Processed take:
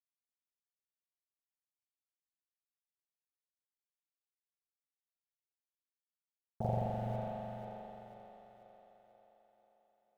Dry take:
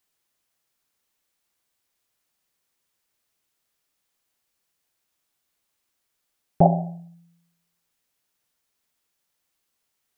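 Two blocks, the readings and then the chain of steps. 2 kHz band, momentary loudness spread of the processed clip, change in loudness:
n/a, 21 LU, -18.5 dB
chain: LPF 1100 Hz 6 dB/oct; bell 290 Hz -10.5 dB 0.69 oct; compressor 12:1, threshold -30 dBFS, peak gain reduction 18 dB; tremolo 1.4 Hz, depth 40%; sample gate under -50 dBFS; ring modulator 53 Hz; split-band echo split 350 Hz, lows 0.205 s, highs 0.49 s, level -6 dB; spring tank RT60 3 s, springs 42 ms, chirp 75 ms, DRR -9.5 dB; gain -2 dB

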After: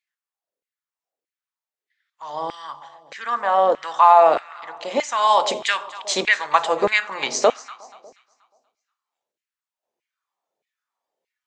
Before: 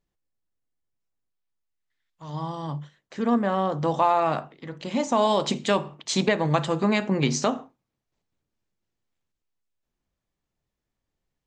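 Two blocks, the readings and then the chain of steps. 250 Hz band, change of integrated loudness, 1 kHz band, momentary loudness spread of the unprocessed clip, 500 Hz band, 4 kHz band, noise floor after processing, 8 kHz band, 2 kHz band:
-11.0 dB, +5.5 dB, +8.5 dB, 14 LU, +4.5 dB, +5.0 dB, under -85 dBFS, +4.0 dB, +9.5 dB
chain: echo with dull and thin repeats by turns 0.12 s, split 880 Hz, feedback 63%, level -13.5 dB; LFO high-pass saw down 1.6 Hz 440–2200 Hz; spectral noise reduction 7 dB; gain +4 dB

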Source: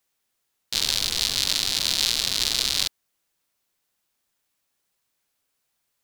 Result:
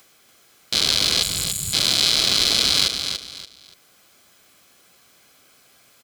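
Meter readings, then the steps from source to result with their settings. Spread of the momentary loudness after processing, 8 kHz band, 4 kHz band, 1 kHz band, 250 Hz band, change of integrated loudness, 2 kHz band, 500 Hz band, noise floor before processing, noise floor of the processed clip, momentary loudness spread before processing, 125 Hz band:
11 LU, +3.5 dB, +5.0 dB, +6.0 dB, +8.5 dB, +4.0 dB, +4.5 dB, +8.5 dB, -77 dBFS, -56 dBFS, 4 LU, +8.0 dB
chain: spectral gain 1.22–1.74, 210–6700 Hz -27 dB; high shelf 7200 Hz -7 dB; in parallel at -2 dB: limiter -15.5 dBFS, peak gain reduction 10.5 dB; on the sum: sample leveller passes 1; upward compressor, threshold -41 dBFS; notch comb 910 Hz; on a send: feedback echo 0.288 s, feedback 28%, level -7 dB; on the sum: gain +3 dB

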